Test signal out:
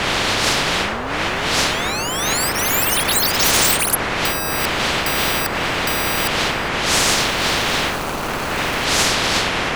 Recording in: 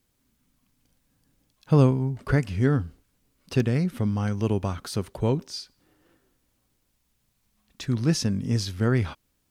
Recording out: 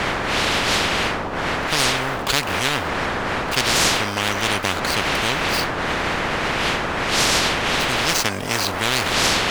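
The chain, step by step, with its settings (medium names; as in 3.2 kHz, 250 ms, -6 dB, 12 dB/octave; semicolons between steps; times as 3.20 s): median filter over 25 samples; wind noise 610 Hz -26 dBFS; spectrum-flattening compressor 10:1; trim -1 dB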